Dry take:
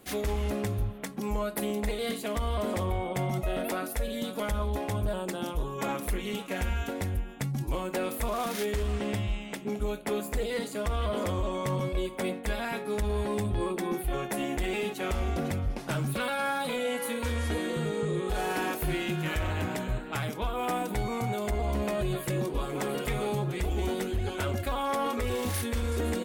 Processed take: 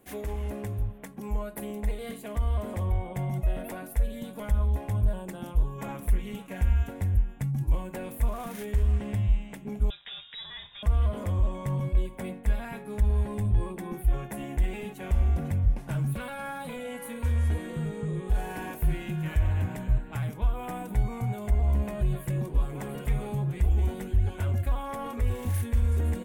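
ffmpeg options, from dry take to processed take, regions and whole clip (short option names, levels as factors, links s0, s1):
-filter_complex "[0:a]asettb=1/sr,asplit=3[s0][s1][s2];[s0]atrim=end=9.904[s3];[s1]atrim=start=9.9:end=10.83,asetpts=PTS-STARTPTS,afade=t=in:d=0.004:c=qsin,afade=t=out:st=0.926:d=0.004:c=qsin,acrusher=bits=9:dc=4:mix=0:aa=0.000001,lowpass=f=3300:t=q:w=0.5098,lowpass=f=3300:t=q:w=0.6013,lowpass=f=3300:t=q:w=0.9,lowpass=f=3300:t=q:w=2.563,afreqshift=-3900[s4];[s2]atrim=start=10.826[s5];[s3][s4]acrossfade=d=0.004:c1=hsin:c2=qsin[s6];[s6][s5]acrossfade=d=0.004:c1=qsin:c2=hsin,equalizer=f=4500:w=1.1:g=-10,bandreject=f=1300:w=9,asubboost=boost=4.5:cutoff=150,volume=0.596"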